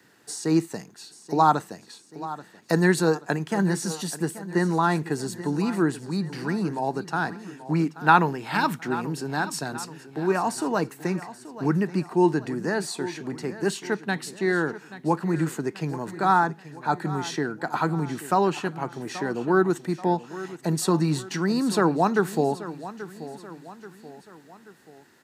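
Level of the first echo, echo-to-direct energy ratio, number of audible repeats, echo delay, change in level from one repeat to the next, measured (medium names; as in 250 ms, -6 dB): -15.0 dB, -14.0 dB, 3, 832 ms, -6.5 dB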